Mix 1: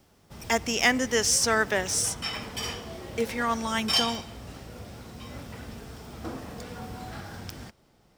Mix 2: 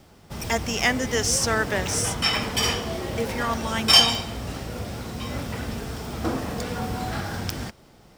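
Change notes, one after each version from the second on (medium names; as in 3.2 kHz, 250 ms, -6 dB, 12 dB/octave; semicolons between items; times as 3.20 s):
background +10.0 dB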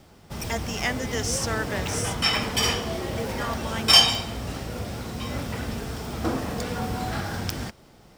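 speech -5.5 dB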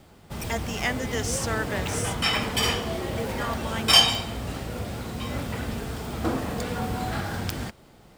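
master: add peaking EQ 5.5 kHz -6 dB 0.3 oct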